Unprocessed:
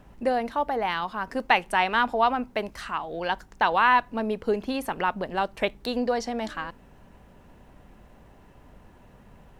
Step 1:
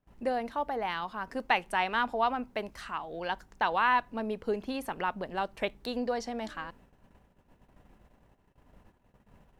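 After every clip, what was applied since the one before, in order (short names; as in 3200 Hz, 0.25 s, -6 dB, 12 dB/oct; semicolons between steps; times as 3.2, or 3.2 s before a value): gate -50 dBFS, range -23 dB; gain -6 dB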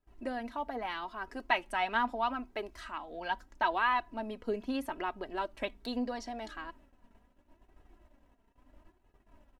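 high shelf 9900 Hz -3.5 dB; comb 3.1 ms, depth 46%; flange 0.77 Hz, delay 2.3 ms, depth 2.2 ms, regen +35%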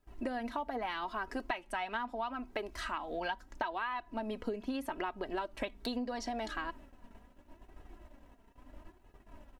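compressor 16:1, threshold -40 dBFS, peak gain reduction 18 dB; gain +7 dB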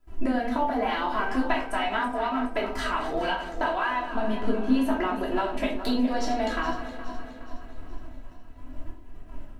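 regenerating reverse delay 0.209 s, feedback 72%, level -11 dB; in parallel at -5 dB: backlash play -52 dBFS; on the sum: shoebox room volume 290 m³, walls furnished, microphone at 3 m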